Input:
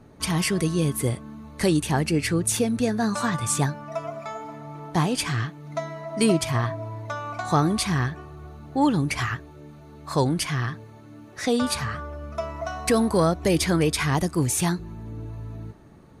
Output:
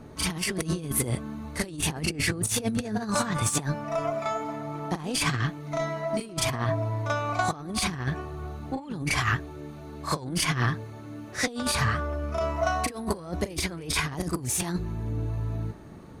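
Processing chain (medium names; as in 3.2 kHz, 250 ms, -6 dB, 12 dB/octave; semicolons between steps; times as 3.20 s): Chebyshev shaper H 4 -33 dB, 8 -34 dB, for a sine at -8 dBFS; reverse echo 38 ms -9.5 dB; compressor with a negative ratio -27 dBFS, ratio -0.5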